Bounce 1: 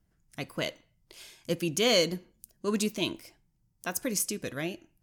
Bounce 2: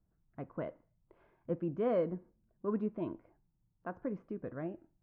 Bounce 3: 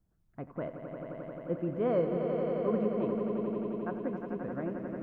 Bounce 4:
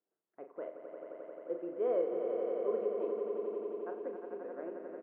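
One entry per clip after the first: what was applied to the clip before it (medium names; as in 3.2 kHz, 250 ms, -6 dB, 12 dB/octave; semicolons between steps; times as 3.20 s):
low-pass 1.3 kHz 24 dB/octave; trim -5 dB
echo with a slow build-up 88 ms, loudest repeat 5, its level -8 dB; trim +2 dB
ladder high-pass 360 Hz, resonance 50%; distance through air 160 m; doubling 40 ms -8 dB; trim +1 dB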